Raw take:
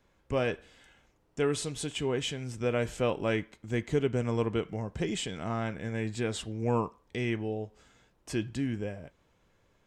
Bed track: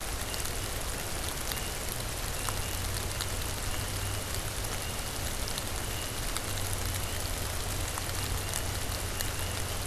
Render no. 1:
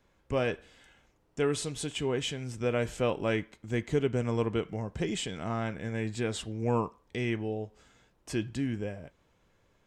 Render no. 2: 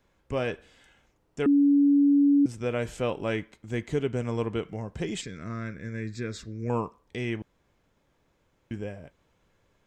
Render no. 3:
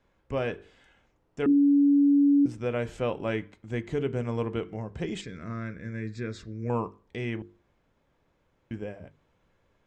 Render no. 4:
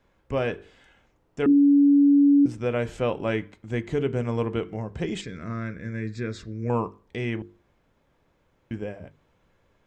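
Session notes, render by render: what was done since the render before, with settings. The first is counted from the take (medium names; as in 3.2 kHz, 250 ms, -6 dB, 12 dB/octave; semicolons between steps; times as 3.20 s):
no audible change
1.46–2.46 s: bleep 284 Hz -16.5 dBFS; 5.21–6.70 s: static phaser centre 3 kHz, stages 6; 7.42–8.71 s: room tone
low-pass 3.1 kHz 6 dB/octave; hum notches 50/100/150/200/250/300/350/400/450 Hz
trim +3.5 dB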